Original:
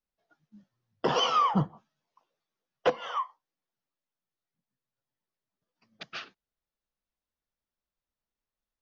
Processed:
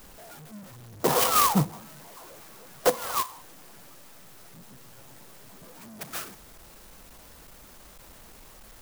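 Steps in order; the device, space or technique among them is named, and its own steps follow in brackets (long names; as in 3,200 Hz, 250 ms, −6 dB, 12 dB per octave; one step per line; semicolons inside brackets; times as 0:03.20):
early CD player with a faulty converter (converter with a step at zero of −43 dBFS; converter with an unsteady clock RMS 0.094 ms)
level +3 dB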